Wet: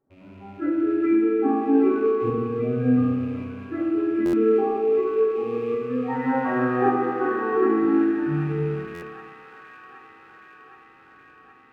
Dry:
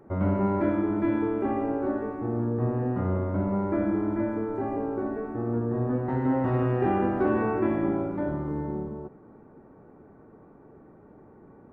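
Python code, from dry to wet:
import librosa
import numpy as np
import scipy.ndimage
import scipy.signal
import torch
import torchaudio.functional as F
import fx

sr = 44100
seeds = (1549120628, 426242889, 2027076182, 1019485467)

y = fx.rattle_buzz(x, sr, strikes_db=-38.0, level_db=-26.0)
y = fx.noise_reduce_blind(y, sr, reduce_db=24)
y = fx.highpass(y, sr, hz=920.0, slope=6, at=(5.24, 7.53))
y = fx.rider(y, sr, range_db=3, speed_s=0.5)
y = fx.tremolo_shape(y, sr, shape='saw_up', hz=0.87, depth_pct=50)
y = fx.echo_wet_highpass(y, sr, ms=771, feedback_pct=71, hz=2100.0, wet_db=-4.5)
y = fx.rev_fdn(y, sr, rt60_s=2.1, lf_ratio=0.85, hf_ratio=0.6, size_ms=22.0, drr_db=-2.0)
y = fx.buffer_glitch(y, sr, at_s=(4.25, 8.94), block=512, repeats=6)
y = y * 10.0 ** (8.0 / 20.0)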